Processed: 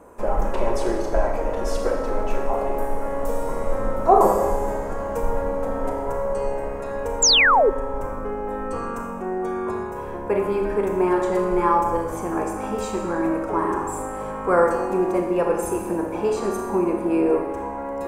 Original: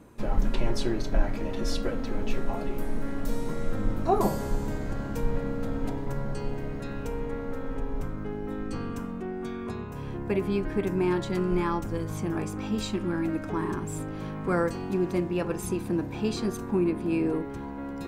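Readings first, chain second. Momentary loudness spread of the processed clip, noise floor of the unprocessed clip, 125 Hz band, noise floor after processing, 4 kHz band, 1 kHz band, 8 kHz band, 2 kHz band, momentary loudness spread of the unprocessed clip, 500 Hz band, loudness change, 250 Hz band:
11 LU, -36 dBFS, -3.0 dB, -30 dBFS, +16.0 dB, +13.0 dB, +15.0 dB, +12.5 dB, 9 LU, +9.5 dB, +8.0 dB, +2.5 dB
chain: ten-band graphic EQ 125 Hz -8 dB, 250 Hz -6 dB, 500 Hz +9 dB, 1 kHz +8 dB, 4 kHz -11 dB, 8 kHz +4 dB; Schroeder reverb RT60 1.1 s, combs from 27 ms, DRR 2.5 dB; painted sound fall, 7.22–7.70 s, 370–7700 Hz -17 dBFS; trim +2 dB

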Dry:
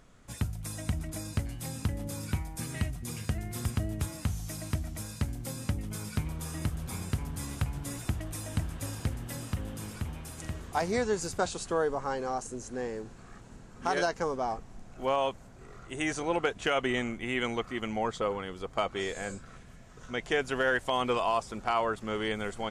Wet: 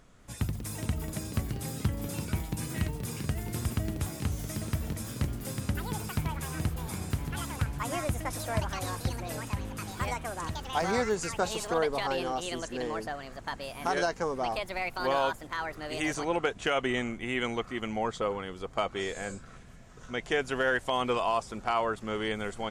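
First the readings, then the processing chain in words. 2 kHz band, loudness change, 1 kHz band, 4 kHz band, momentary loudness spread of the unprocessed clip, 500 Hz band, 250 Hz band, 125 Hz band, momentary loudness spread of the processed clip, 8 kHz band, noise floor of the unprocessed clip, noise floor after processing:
+1.5 dB, +0.5 dB, +1.5 dB, +1.5 dB, 10 LU, +0.5 dB, +1.0 dB, +1.0 dB, 8 LU, +0.5 dB, -51 dBFS, -49 dBFS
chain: ever faster or slower copies 198 ms, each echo +6 st, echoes 2, each echo -6 dB

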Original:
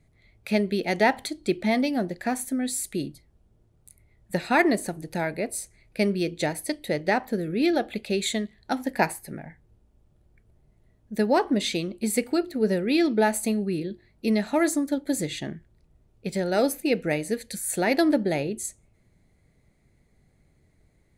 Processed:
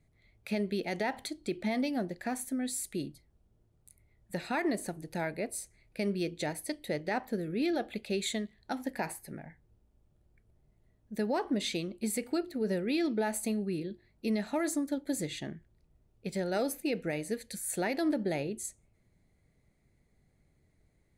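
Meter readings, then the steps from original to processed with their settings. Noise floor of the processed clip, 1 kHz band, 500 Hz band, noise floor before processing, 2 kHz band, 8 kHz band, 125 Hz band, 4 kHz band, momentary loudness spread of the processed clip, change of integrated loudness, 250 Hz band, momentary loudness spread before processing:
-71 dBFS, -10.0 dB, -8.5 dB, -64 dBFS, -10.0 dB, -6.5 dB, -7.0 dB, -7.5 dB, 10 LU, -8.0 dB, -7.5 dB, 10 LU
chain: peak limiter -16 dBFS, peak gain reduction 9.5 dB; trim -6.5 dB

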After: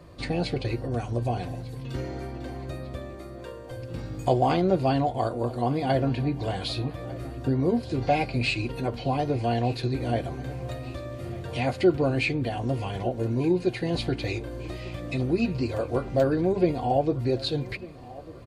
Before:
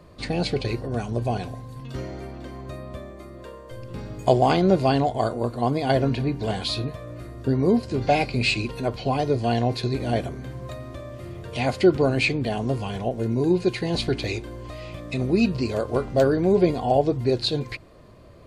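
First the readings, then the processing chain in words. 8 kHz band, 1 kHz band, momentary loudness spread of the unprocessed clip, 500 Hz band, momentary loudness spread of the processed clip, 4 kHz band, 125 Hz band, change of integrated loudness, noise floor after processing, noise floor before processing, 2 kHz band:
-6.0 dB, -2.5 dB, 18 LU, -3.5 dB, 13 LU, -5.0 dB, -1.5 dB, -4.0 dB, -41 dBFS, -43 dBFS, -4.0 dB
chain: in parallel at -0.5 dB: compression, threshold -30 dBFS, peak gain reduction 17 dB; on the sum: comb of notches 210 Hz; dynamic bell 6.3 kHz, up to -5 dB, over -44 dBFS, Q 0.78; feedback delay 1198 ms, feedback 54%, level -19.5 dB; trim -4 dB

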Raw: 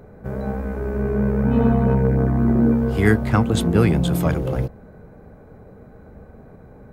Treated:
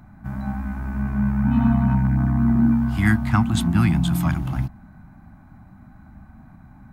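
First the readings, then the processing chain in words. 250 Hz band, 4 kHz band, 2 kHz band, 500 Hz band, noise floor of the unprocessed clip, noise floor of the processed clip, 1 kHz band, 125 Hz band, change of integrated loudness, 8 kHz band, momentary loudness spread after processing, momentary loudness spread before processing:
-0.5 dB, -1.0 dB, -0.5 dB, -18.0 dB, -45 dBFS, -47 dBFS, -1.5 dB, -0.5 dB, -1.5 dB, -1.0 dB, 11 LU, 10 LU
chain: Chebyshev band-stop 260–830 Hz, order 2

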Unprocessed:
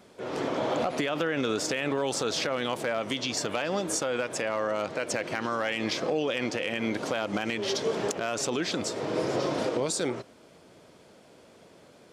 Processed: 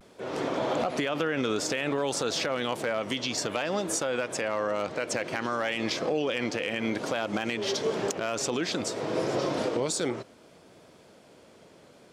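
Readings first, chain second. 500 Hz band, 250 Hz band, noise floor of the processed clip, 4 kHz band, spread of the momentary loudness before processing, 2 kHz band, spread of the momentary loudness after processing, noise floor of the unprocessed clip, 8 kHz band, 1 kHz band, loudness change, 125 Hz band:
0.0 dB, 0.0 dB, -55 dBFS, 0.0 dB, 2 LU, 0.0 dB, 2 LU, -55 dBFS, 0.0 dB, 0.0 dB, 0.0 dB, 0.0 dB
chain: vibrato 0.58 Hz 41 cents

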